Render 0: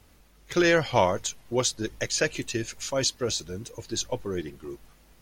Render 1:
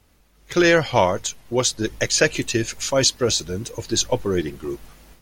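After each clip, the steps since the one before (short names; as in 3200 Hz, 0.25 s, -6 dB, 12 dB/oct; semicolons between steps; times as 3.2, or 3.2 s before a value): AGC gain up to 12 dB; gain -2 dB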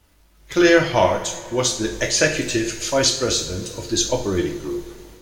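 crackle 370/s -52 dBFS; two-slope reverb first 0.49 s, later 3.2 s, from -18 dB, DRR 1.5 dB; gain -1.5 dB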